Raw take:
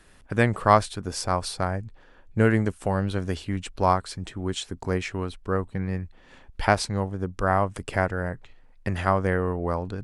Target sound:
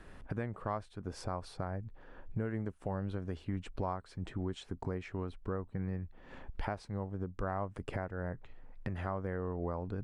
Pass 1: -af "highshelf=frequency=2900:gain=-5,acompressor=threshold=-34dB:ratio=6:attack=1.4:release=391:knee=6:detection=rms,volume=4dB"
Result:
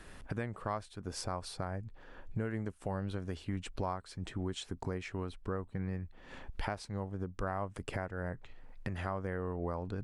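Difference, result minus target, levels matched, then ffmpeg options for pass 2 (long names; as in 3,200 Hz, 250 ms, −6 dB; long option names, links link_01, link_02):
8,000 Hz band +9.0 dB
-af "highshelf=frequency=2900:gain=-16.5,acompressor=threshold=-34dB:ratio=6:attack=1.4:release=391:knee=6:detection=rms,volume=4dB"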